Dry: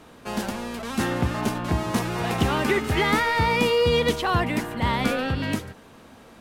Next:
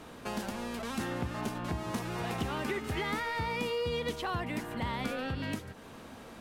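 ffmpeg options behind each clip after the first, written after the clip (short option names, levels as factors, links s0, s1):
-af "acompressor=threshold=0.0141:ratio=2.5"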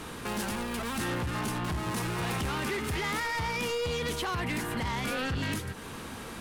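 -af "equalizer=f=250:t=o:w=0.67:g=-4,equalizer=f=630:t=o:w=0.67:g=-8,equalizer=f=10000:t=o:w=0.67:g=5,alimiter=level_in=1.88:limit=0.0631:level=0:latency=1:release=12,volume=0.531,aeval=exprs='0.0335*sin(PI/2*1.58*val(0)/0.0335)':c=same,volume=1.26"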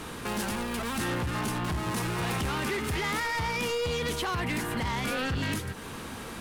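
-af "acrusher=bits=10:mix=0:aa=0.000001,volume=1.19"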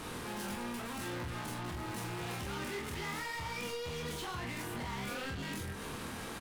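-af "alimiter=level_in=2.11:limit=0.0631:level=0:latency=1:release=99,volume=0.473,asoftclip=type=tanh:threshold=0.0112,aecho=1:1:25|45:0.596|0.531,volume=0.891"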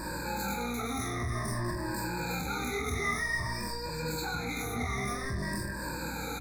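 -af "afftfilt=real='re*pow(10,20/40*sin(2*PI*(1.3*log(max(b,1)*sr/1024/100)/log(2)-(-0.52)*(pts-256)/sr)))':imag='im*pow(10,20/40*sin(2*PI*(1.3*log(max(b,1)*sr/1024/100)/log(2)-(-0.52)*(pts-256)/sr)))':win_size=1024:overlap=0.75,aeval=exprs='val(0)+0.00562*(sin(2*PI*60*n/s)+sin(2*PI*2*60*n/s)/2+sin(2*PI*3*60*n/s)/3+sin(2*PI*4*60*n/s)/4+sin(2*PI*5*60*n/s)/5)':c=same,asuperstop=centerf=3000:order=20:qfactor=2.9,volume=1.26"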